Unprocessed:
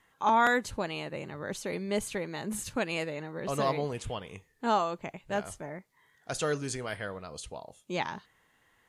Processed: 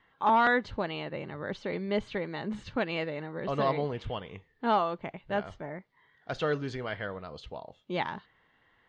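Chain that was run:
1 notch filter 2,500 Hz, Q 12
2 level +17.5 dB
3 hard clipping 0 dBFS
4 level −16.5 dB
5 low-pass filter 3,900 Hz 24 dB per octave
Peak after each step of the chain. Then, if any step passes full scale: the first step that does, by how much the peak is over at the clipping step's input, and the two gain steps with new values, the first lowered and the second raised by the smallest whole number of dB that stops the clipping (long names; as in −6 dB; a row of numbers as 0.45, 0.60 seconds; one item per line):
−13.0, +4.5, 0.0, −16.5, −15.5 dBFS
step 2, 4.5 dB
step 2 +12.5 dB, step 4 −11.5 dB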